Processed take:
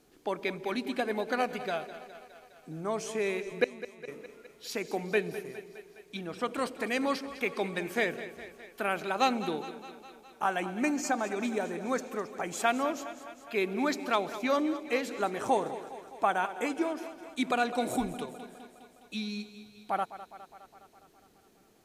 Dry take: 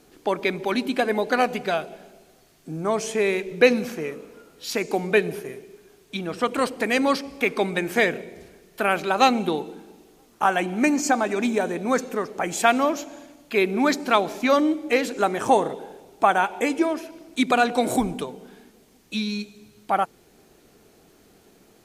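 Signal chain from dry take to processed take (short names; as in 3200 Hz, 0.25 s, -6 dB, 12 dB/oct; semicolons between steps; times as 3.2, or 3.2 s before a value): 3.64–4.08 passive tone stack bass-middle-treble 10-0-1; thinning echo 0.206 s, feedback 66%, high-pass 170 Hz, level -14 dB; gain -9 dB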